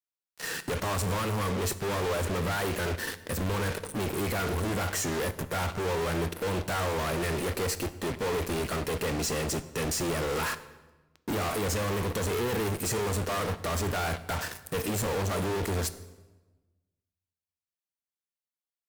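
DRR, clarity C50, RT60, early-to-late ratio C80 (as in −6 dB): 12.0 dB, 15.0 dB, 1.2 s, 16.5 dB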